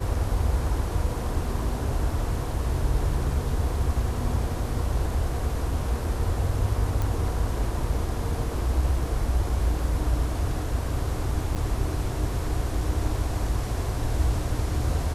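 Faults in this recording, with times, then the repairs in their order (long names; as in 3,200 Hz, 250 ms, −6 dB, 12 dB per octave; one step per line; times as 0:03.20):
0:07.02: click
0:11.55–0:11.56: drop-out 7.7 ms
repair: click removal
repair the gap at 0:11.55, 7.7 ms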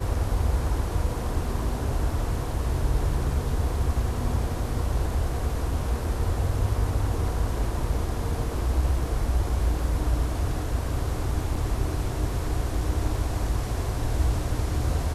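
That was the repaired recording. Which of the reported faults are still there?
none of them is left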